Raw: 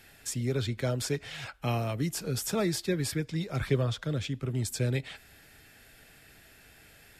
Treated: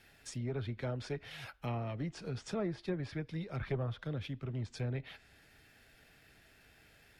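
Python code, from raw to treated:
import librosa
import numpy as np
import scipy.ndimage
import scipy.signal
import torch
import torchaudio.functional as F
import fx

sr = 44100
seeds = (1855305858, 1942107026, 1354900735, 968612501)

y = fx.diode_clip(x, sr, knee_db=-22.0)
y = np.repeat(scipy.signal.resample_poly(y, 1, 3), 3)[:len(y)]
y = fx.env_lowpass_down(y, sr, base_hz=1600.0, full_db=-26.0)
y = F.gain(torch.from_numpy(y), -6.0).numpy()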